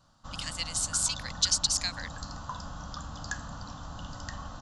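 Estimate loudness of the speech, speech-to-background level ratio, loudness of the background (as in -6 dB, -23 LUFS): -28.0 LUFS, 12.5 dB, -40.5 LUFS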